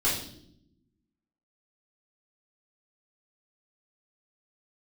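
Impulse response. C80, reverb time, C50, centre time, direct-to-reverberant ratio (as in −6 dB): 8.5 dB, 0.70 s, 4.5 dB, 40 ms, −10.0 dB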